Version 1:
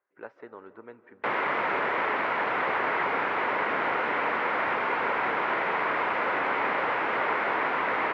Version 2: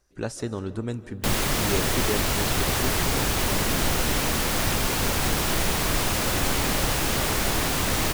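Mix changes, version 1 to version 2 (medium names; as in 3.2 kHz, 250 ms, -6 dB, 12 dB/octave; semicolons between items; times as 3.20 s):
speech +10.0 dB; master: remove cabinet simulation 450–2200 Hz, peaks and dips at 460 Hz +3 dB, 970 Hz +6 dB, 1.4 kHz +4 dB, 2.1 kHz +5 dB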